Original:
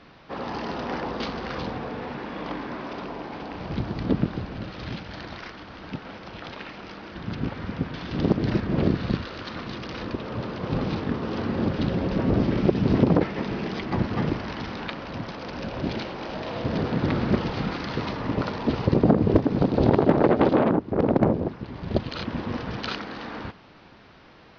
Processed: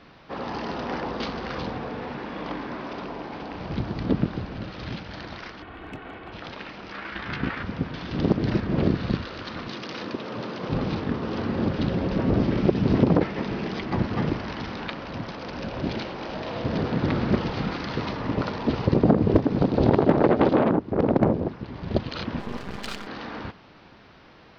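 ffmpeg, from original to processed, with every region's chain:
-filter_complex "[0:a]asettb=1/sr,asplit=3[a][b][c];[a]atrim=end=5.624[d];[b]atrim=start=5.62:end=6.32,asetpts=PTS-STARTPTS,afade=t=in:d=0.004:c=qsin,afade=t=out:st=0.696:d=0.004:c=qsin,lowpass=f=3.1k:w=0.5412,lowpass=f=3.1k:w=1.3066,aecho=1:1:2.7:0.47,atrim=end_sample=30870,asoftclip=type=hard:threshold=-31.5dB[e];[c]atrim=start=6.316[f];[d][e]acrossfade=d=0.004:c1=hsin:c2=qsin[g];[g][f]acrossfade=d=0.004:c1=qsin:c2=hsin,asettb=1/sr,asplit=3[h][i][j];[h]atrim=end=6.924[k];[i]atrim=start=6.92:end=7.63,asetpts=PTS-STARTPTS,afade=t=in:d=0.004:c=qsin,afade=t=out:st=0.706:d=0.004:c=qsin,equalizer=f=1.8k:t=o:w=2:g=13,tremolo=f=29:d=0.75,asplit=2[l][m];[m]adelay=15,volume=-4.5dB[n];[l][n]amix=inputs=2:normalize=0,atrim=end_sample=31311[o];[j]atrim=start=7.626[p];[k][o]acrossfade=d=0.004:c1=hsin:c2=qsin[q];[q][p]acrossfade=d=0.004:c1=qsin:c2=hsin,asettb=1/sr,asplit=3[r][s][t];[r]atrim=end=9.684[u];[s]atrim=start=9.68:end=10.69,asetpts=PTS-STARTPTS,afade=t=in:d=0.004:c=qsin,afade=t=out:st=1.006:d=0.004:c=qsin,highpass=170,highshelf=f=4.2k:g=5.5[v];[t]atrim=start=10.686[w];[u][v]acrossfade=d=0.004:c1=hsin:c2=qsin[x];[x][w]acrossfade=d=0.004:c1=qsin:c2=hsin,asettb=1/sr,asplit=3[y][z][aa];[y]atrim=end=22.394[ab];[z]atrim=start=22.39:end=23.07,asetpts=PTS-STARTPTS,afade=t=in:d=0.004:c=qsin,afade=t=out:st=0.676:d=0.004:c=qsin,aecho=1:1:5:0.44,atrim=end_sample=29988,aeval=exprs='max(val(0),0)':c=same[ac];[aa]atrim=start=23.066[ad];[ab][ac]acrossfade=d=0.004:c1=hsin:c2=qsin[ae];[ae][ad]acrossfade=d=0.004:c1=qsin:c2=hsin"

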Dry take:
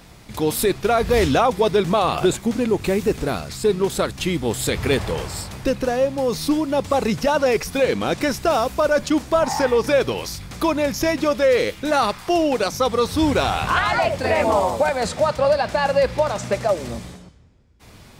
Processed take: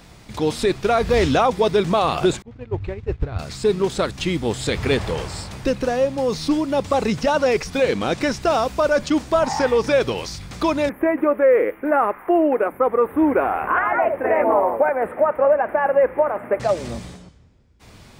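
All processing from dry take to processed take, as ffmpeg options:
-filter_complex "[0:a]asettb=1/sr,asplit=3[a][b][c];[a]atrim=end=2.424[d];[b]atrim=start=2.42:end=3.39,asetpts=PTS-STARTPTS,afade=t=in:d=0.004:c=qsin,afade=t=out:st=0.966:d=0.004:c=qsin,lowpass=2.7k,lowshelf=f=140:t=q:w=3:g=11,agate=range=-33dB:threshold=-12dB:ratio=3:release=100:detection=peak[e];[c]atrim=start=3.386[f];[d][e]acrossfade=d=0.004:c1=hsin:c2=qsin[g];[g][f]acrossfade=d=0.004:c1=qsin:c2=hsin,asettb=1/sr,asplit=3[h][i][j];[h]atrim=end=10.894[k];[i]atrim=start=10.89:end=16.6,asetpts=PTS-STARTPTS,afade=t=in:d=0.004:c=qsin,afade=t=out:st=5.706:d=0.004:c=qsin,asuperstop=centerf=5300:order=8:qfactor=0.56,lowshelf=f=210:t=q:w=1.5:g=-13.5[l];[j]atrim=start=16.596[m];[k][l]acrossfade=d=0.004:c1=hsin:c2=qsin[n];[n][m]acrossfade=d=0.004:c1=qsin:c2=hsin,acrossover=split=7500[o][p];[p]acompressor=threshold=-45dB:ratio=4:attack=1:release=60[q];[o][q]amix=inputs=2:normalize=0,equalizer=f=12k:t=o:w=0.2:g=-13.5"

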